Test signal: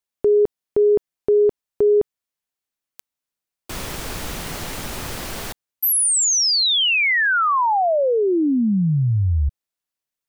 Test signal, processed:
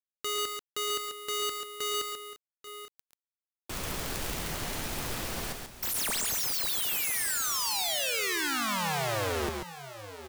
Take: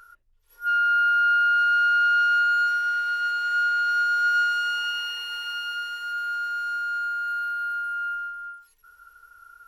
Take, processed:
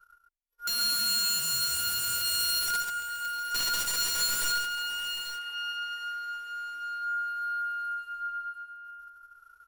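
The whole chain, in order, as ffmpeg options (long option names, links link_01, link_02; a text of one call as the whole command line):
ffmpeg -i in.wav -af "aeval=exprs='(mod(10*val(0)+1,2)-1)/10':channel_layout=same,agate=range=-28dB:threshold=-50dB:ratio=3:release=24:detection=rms,aecho=1:1:113|138|838|867:0.251|0.531|0.211|0.126,volume=-6.5dB" out.wav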